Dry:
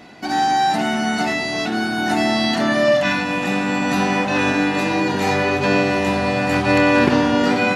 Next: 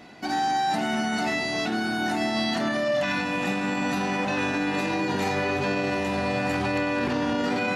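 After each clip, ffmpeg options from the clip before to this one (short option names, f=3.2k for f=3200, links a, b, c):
-af "alimiter=limit=-13dB:level=0:latency=1:release=26,volume=-4.5dB"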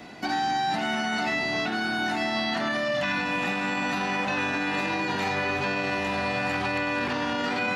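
-filter_complex "[0:a]acrossover=split=310|730|2400|5000[a][b][c][d][e];[a]acompressor=threshold=-38dB:ratio=4[f];[b]acompressor=threshold=-42dB:ratio=4[g];[c]acompressor=threshold=-31dB:ratio=4[h];[d]acompressor=threshold=-38dB:ratio=4[i];[e]acompressor=threshold=-57dB:ratio=4[j];[f][g][h][i][j]amix=inputs=5:normalize=0,volume=3.5dB"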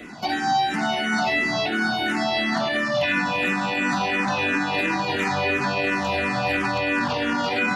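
-filter_complex "[0:a]asplit=2[a][b];[b]afreqshift=-2.9[c];[a][c]amix=inputs=2:normalize=1,volume=7dB"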